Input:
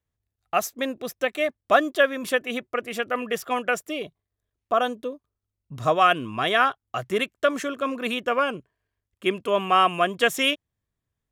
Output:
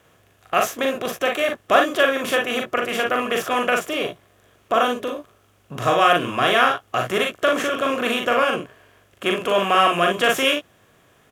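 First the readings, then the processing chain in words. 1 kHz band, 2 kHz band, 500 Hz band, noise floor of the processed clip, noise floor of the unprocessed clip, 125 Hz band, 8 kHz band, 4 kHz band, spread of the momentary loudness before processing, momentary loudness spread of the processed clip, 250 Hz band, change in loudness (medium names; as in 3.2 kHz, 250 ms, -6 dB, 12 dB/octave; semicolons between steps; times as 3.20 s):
+3.5 dB, +4.5 dB, +4.0 dB, -58 dBFS, -85 dBFS, +4.0 dB, +4.5 dB, +5.0 dB, 10 LU, 9 LU, +3.5 dB, +4.0 dB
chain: spectral levelling over time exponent 0.6; early reflections 41 ms -3.5 dB, 58 ms -8.5 dB; trim -1.5 dB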